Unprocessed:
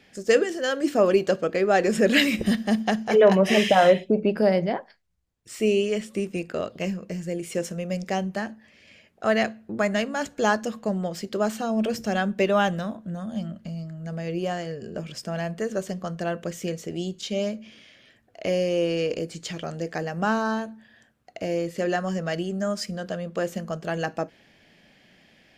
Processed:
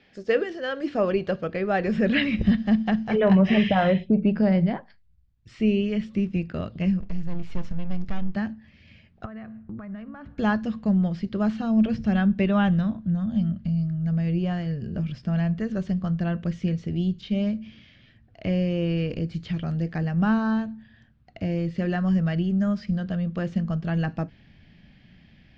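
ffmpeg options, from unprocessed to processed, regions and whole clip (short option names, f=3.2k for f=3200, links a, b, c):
-filter_complex "[0:a]asettb=1/sr,asplit=3[a][b][c];[a]atrim=end=7.004[d];[b]atrim=start=7:end=8.35,asetpts=PTS-STARTPTS,afade=t=in:d=0.004:c=qsin,afade=t=out:st=1.346:d=0.004:c=qsin,acompressor=threshold=-31dB:ratio=1.5:attack=3.2:release=140:knee=1:detection=peak,aeval=exprs='max(val(0),0)':c=same[e];[c]atrim=start=8.346[f];[d][e]acrossfade=d=0.004:c1=hsin:c2=qsin[g];[g][f]acrossfade=d=0.004:c1=qsin:c2=hsin,asettb=1/sr,asplit=3[h][i][j];[h]atrim=end=9.254[k];[i]atrim=start=9.25:end=10.38,asetpts=PTS-STARTPTS,afade=t=in:d=0.004:c=qsin,afade=t=out:st=1.126:d=0.004:c=qsin,lowpass=1.7k,acompressor=threshold=-37dB:ratio=8:attack=3.2:release=140:knee=1:detection=peak,equalizer=f=1.2k:t=o:w=0.46:g=6.5[l];[j]atrim=start=10.376[m];[k][l]acrossfade=d=0.004:c1=hsin:c2=qsin[n];[n][m]acrossfade=d=0.004:c1=qsin:c2=hsin,lowpass=f=4.7k:w=0.5412,lowpass=f=4.7k:w=1.3066,acrossover=split=3500[o][p];[p]acompressor=threshold=-51dB:ratio=4:attack=1:release=60[q];[o][q]amix=inputs=2:normalize=0,asubboost=boost=9.5:cutoff=150,volume=-2.5dB"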